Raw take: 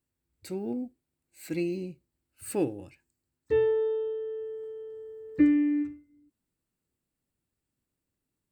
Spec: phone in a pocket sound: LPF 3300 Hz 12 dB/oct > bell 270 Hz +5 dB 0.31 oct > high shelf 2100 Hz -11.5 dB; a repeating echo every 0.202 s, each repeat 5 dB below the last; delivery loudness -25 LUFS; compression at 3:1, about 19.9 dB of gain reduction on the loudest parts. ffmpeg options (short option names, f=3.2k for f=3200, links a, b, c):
-af "acompressor=threshold=-45dB:ratio=3,lowpass=3.3k,equalizer=f=270:t=o:w=0.31:g=5,highshelf=f=2.1k:g=-11.5,aecho=1:1:202|404|606|808|1010|1212|1414:0.562|0.315|0.176|0.0988|0.0553|0.031|0.0173,volume=18dB"